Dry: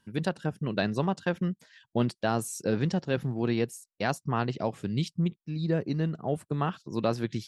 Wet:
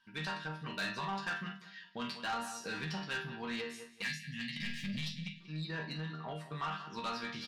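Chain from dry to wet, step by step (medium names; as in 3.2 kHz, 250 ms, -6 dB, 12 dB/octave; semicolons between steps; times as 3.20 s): 4.56–5.01 s: waveshaping leveller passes 3; chord resonator D#3 major, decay 0.31 s; on a send: feedback delay 189 ms, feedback 27%, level -17 dB; 4.02–5.41 s: on the sum: spectral selection erased 300–1600 Hz; peak limiter -35.5 dBFS, peak gain reduction 8 dB; high-order bell 2.2 kHz +15.5 dB 2.9 oct; doubling 46 ms -10.5 dB; saturation -34 dBFS, distortion -13 dB; trim +3 dB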